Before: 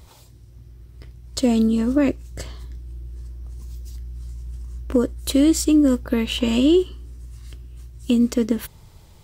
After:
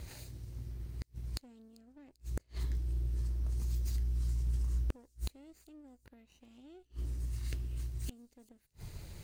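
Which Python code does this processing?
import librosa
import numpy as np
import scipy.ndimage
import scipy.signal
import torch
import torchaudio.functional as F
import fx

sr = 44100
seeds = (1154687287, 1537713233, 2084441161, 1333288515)

y = fx.lower_of_two(x, sr, delay_ms=0.45)
y = fx.gate_flip(y, sr, shuts_db=-25.0, range_db=-40)
y = fx.echo_wet_highpass(y, sr, ms=393, feedback_pct=42, hz=4600.0, wet_db=-19.5)
y = y * 10.0 ** (1.0 / 20.0)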